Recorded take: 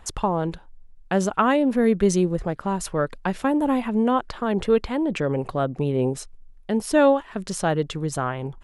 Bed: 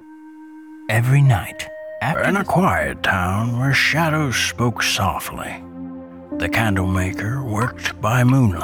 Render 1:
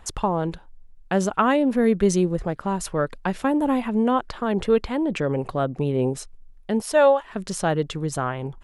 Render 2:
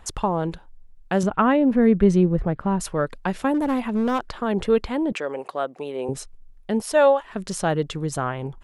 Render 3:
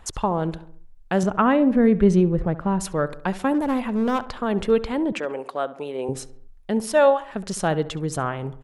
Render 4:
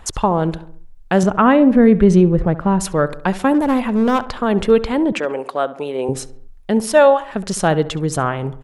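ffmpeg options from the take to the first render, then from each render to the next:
ffmpeg -i in.wav -filter_complex "[0:a]asettb=1/sr,asplit=3[link_01][link_02][link_03];[link_01]atrim=end=6.814[link_04];[link_02]atrim=start=6.81:end=7.23,asetpts=PTS-STARTPTS,afade=type=in:duration=0.004:curve=qsin,afade=type=out:start_time=0.416:duration=0.004:curve=qsin,lowshelf=frequency=410:width_type=q:width=1.5:gain=-9[link_05];[link_03]atrim=start=7.226[link_06];[link_04][link_05]acrossfade=duration=0.004:curve1=hsin:curve2=qsin[link_07];[link_07][link_06]acrossfade=duration=0.004:curve1=qsin:curve2=hsin" out.wav
ffmpeg -i in.wav -filter_complex "[0:a]asettb=1/sr,asplit=3[link_01][link_02][link_03];[link_01]atrim=end=1.234[link_04];[link_02]atrim=start=1.23:end=2.8,asetpts=PTS-STARTPTS,afade=type=in:duration=0.004:curve=qsin,afade=type=out:start_time=1.566:duration=0.004:curve=qsin,bass=frequency=250:gain=6,treble=frequency=4000:gain=-15[link_05];[link_03]atrim=start=2.796[link_06];[link_04][link_05]acrossfade=duration=0.004:curve1=hsin:curve2=qsin[link_07];[link_07][link_06]acrossfade=duration=0.004:curve1=qsin:curve2=hsin,asettb=1/sr,asplit=3[link_08][link_09][link_10];[link_08]atrim=end=3.544[link_11];[link_09]atrim=start=3.54:end=4.28,asetpts=PTS-STARTPTS,afade=type=in:duration=0.004:curve=qsin,afade=type=out:start_time=0.736:duration=0.004:curve=qsin,asoftclip=type=hard:threshold=-17.5dB[link_12];[link_10]atrim=start=4.276[link_13];[link_11][link_12]acrossfade=duration=0.004:curve1=hsin:curve2=qsin[link_14];[link_14][link_13]acrossfade=duration=0.004:curve1=qsin:curve2=hsin,asettb=1/sr,asplit=3[link_15][link_16][link_17];[link_15]atrim=end=5.124[link_18];[link_16]atrim=start=5.12:end=6.09,asetpts=PTS-STARTPTS,afade=type=in:duration=0.004:curve=qsin,afade=type=out:start_time=0.966:duration=0.004:curve=qsin,highpass=490[link_19];[link_17]atrim=start=6.086[link_20];[link_18][link_19]acrossfade=duration=0.004:curve1=hsin:curve2=qsin[link_21];[link_21][link_20]acrossfade=duration=0.004:curve1=qsin:curve2=hsin" out.wav
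ffmpeg -i in.wav -filter_complex "[0:a]asplit=2[link_01][link_02];[link_02]adelay=68,lowpass=frequency=2200:poles=1,volume=-15.5dB,asplit=2[link_03][link_04];[link_04]adelay=68,lowpass=frequency=2200:poles=1,volume=0.53,asplit=2[link_05][link_06];[link_06]adelay=68,lowpass=frequency=2200:poles=1,volume=0.53,asplit=2[link_07][link_08];[link_08]adelay=68,lowpass=frequency=2200:poles=1,volume=0.53,asplit=2[link_09][link_10];[link_10]adelay=68,lowpass=frequency=2200:poles=1,volume=0.53[link_11];[link_01][link_03][link_05][link_07][link_09][link_11]amix=inputs=6:normalize=0" out.wav
ffmpeg -i in.wav -af "volume=6.5dB,alimiter=limit=-2dB:level=0:latency=1" out.wav

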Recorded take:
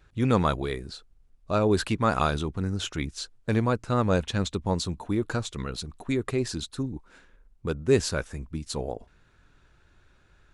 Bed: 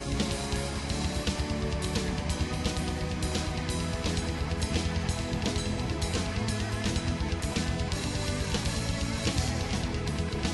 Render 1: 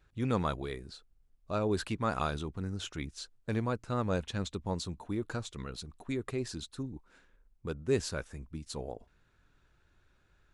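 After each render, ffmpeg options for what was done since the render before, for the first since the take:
ffmpeg -i in.wav -af "volume=-8dB" out.wav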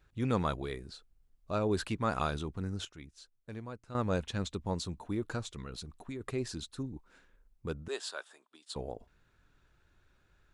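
ffmpeg -i in.wav -filter_complex "[0:a]asettb=1/sr,asplit=3[link_01][link_02][link_03];[link_01]atrim=end=5.514[link_04];[link_02]atrim=start=5.51:end=6.21,asetpts=PTS-STARTPTS,afade=type=in:duration=0.004:curve=qsin,afade=type=out:start_time=0.696:duration=0.004:curve=qsin,acompressor=threshold=-37dB:ratio=5:attack=3.2:release=140:knee=1:detection=peak[link_05];[link_03]atrim=start=6.206[link_06];[link_04][link_05]acrossfade=duration=0.004:curve1=hsin:curve2=qsin[link_07];[link_07][link_06]acrossfade=duration=0.004:curve1=qsin:curve2=hsin,asettb=1/sr,asplit=3[link_08][link_09][link_10];[link_08]atrim=end=7.884[link_11];[link_09]atrim=start=7.88:end=8.76,asetpts=PTS-STARTPTS,afade=type=in:duration=0.004:curve=qsin,afade=type=out:start_time=0.876:duration=0.004:curve=qsin,highpass=frequency=480:width=0.5412,highpass=frequency=480:width=1.3066,equalizer=frequency=500:width_type=q:width=4:gain=-9,equalizer=frequency=2200:width_type=q:width=4:gain=-8,equalizer=frequency=3500:width_type=q:width=4:gain=7,equalizer=frequency=6000:width_type=q:width=4:gain=-9,lowpass=frequency=9600:width=0.5412,lowpass=frequency=9600:width=1.3066[link_12];[link_10]atrim=start=8.756[link_13];[link_11][link_12]acrossfade=duration=0.004:curve1=hsin:curve2=qsin[link_14];[link_14][link_13]acrossfade=duration=0.004:curve1=qsin:curve2=hsin,asplit=3[link_15][link_16][link_17];[link_15]atrim=end=2.852[link_18];[link_16]atrim=start=2.848:end=3.952,asetpts=PTS-STARTPTS,volume=-11dB[link_19];[link_17]atrim=start=3.948[link_20];[link_18][link_19]acrossfade=duration=0.004:curve1=hsin:curve2=hsin[link_21];[link_21][link_20]acrossfade=duration=0.004:curve1=hsin:curve2=hsin" out.wav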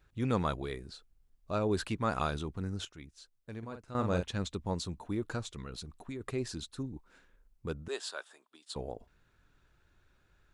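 ffmpeg -i in.wav -filter_complex "[0:a]asettb=1/sr,asplit=3[link_01][link_02][link_03];[link_01]atrim=end=3.584[link_04];[link_02]atrim=start=3.58:end=4.23,asetpts=PTS-STARTPTS,afade=type=in:duration=0.004:curve=qsin,afade=type=out:start_time=0.646:duration=0.004:curve=qsin,asplit=2[link_05][link_06];[link_06]adelay=45,volume=-7dB[link_07];[link_05][link_07]amix=inputs=2:normalize=0,atrim=end_sample=28665[link_08];[link_03]atrim=start=4.226[link_09];[link_04][link_08]acrossfade=duration=0.004:curve1=hsin:curve2=qsin[link_10];[link_10][link_09]acrossfade=duration=0.004:curve1=qsin:curve2=hsin" out.wav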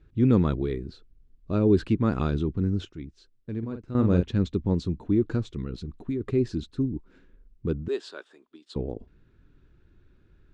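ffmpeg -i in.wav -af "lowpass=4400,lowshelf=frequency=490:width_type=q:width=1.5:gain=10.5" out.wav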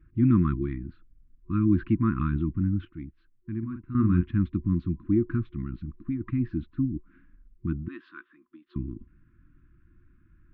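ffmpeg -i in.wav -af "afftfilt=real='re*(1-between(b*sr/4096,360,1000))':imag='im*(1-between(b*sr/4096,360,1000))':win_size=4096:overlap=0.75,lowpass=frequency=2200:width=0.5412,lowpass=frequency=2200:width=1.3066" out.wav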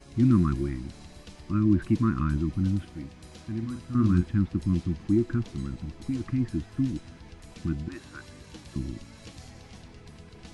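ffmpeg -i in.wav -i bed.wav -filter_complex "[1:a]volume=-17dB[link_01];[0:a][link_01]amix=inputs=2:normalize=0" out.wav

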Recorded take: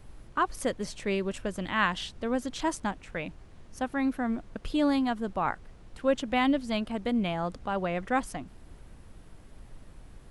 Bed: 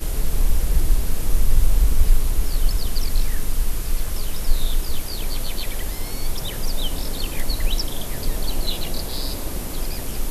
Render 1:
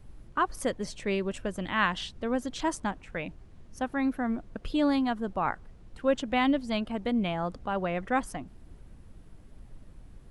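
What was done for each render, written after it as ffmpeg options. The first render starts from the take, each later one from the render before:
ffmpeg -i in.wav -af "afftdn=noise_reduction=6:noise_floor=-52" out.wav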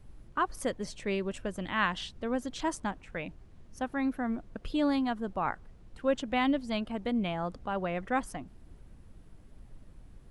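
ffmpeg -i in.wav -af "volume=-2.5dB" out.wav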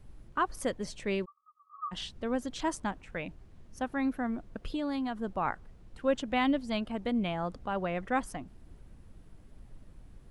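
ffmpeg -i in.wav -filter_complex "[0:a]asplit=3[link_01][link_02][link_03];[link_01]afade=type=out:start_time=1.24:duration=0.02[link_04];[link_02]asuperpass=centerf=1200:order=20:qfactor=7.4,afade=type=in:start_time=1.24:duration=0.02,afade=type=out:start_time=1.91:duration=0.02[link_05];[link_03]afade=type=in:start_time=1.91:duration=0.02[link_06];[link_04][link_05][link_06]amix=inputs=3:normalize=0,asettb=1/sr,asplit=3[link_07][link_08][link_09];[link_07]atrim=end=4.264[link_10];[link_08]atrim=start=4.26:end=5.17,asetpts=PTS-STARTPTS,afade=type=in:duration=0.004:curve=qsin,afade=type=out:start_time=0.906:duration=0.004:curve=qsin,acompressor=threshold=-29dB:ratio=6:attack=3.2:release=140:knee=1:detection=peak[link_11];[link_09]atrim=start=5.166[link_12];[link_10][link_11]acrossfade=duration=0.004:curve1=hsin:curve2=qsin[link_13];[link_13][link_12]acrossfade=duration=0.004:curve1=qsin:curve2=hsin" out.wav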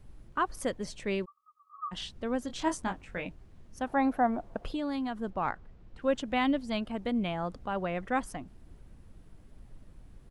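ffmpeg -i in.wav -filter_complex "[0:a]asplit=3[link_01][link_02][link_03];[link_01]afade=type=out:start_time=2.48:duration=0.02[link_04];[link_02]asplit=2[link_05][link_06];[link_06]adelay=22,volume=-5.5dB[link_07];[link_05][link_07]amix=inputs=2:normalize=0,afade=type=in:start_time=2.48:duration=0.02,afade=type=out:start_time=3.28:duration=0.02[link_08];[link_03]afade=type=in:start_time=3.28:duration=0.02[link_09];[link_04][link_08][link_09]amix=inputs=3:normalize=0,asettb=1/sr,asplit=3[link_10][link_11][link_12];[link_10]atrim=end=3.874[link_13];[link_11]atrim=start=3.87:end=4.72,asetpts=PTS-STARTPTS,afade=type=in:duration=0.004:curve=qsin,afade=type=out:start_time=0.846:duration=0.004:curve=qsin,equalizer=frequency=750:width_type=o:width=1.2:gain=13.5[link_14];[link_12]atrim=start=4.716[link_15];[link_13][link_14]acrossfade=duration=0.004:curve1=hsin:curve2=qsin[link_16];[link_16][link_15]acrossfade=duration=0.004:curve1=qsin:curve2=hsin,asettb=1/sr,asplit=3[link_17][link_18][link_19];[link_17]atrim=end=5.304[link_20];[link_18]atrim=start=5.3:end=6.02,asetpts=PTS-STARTPTS,afade=type=in:duration=0.004:curve=qsin,afade=type=out:start_time=0.716:duration=0.004:curve=qsin,adynamicsmooth=sensitivity=4.5:basefreq=5600[link_21];[link_19]atrim=start=6.016[link_22];[link_20][link_21]acrossfade=duration=0.004:curve1=hsin:curve2=qsin[link_23];[link_23][link_22]acrossfade=duration=0.004:curve1=qsin:curve2=hsin" out.wav

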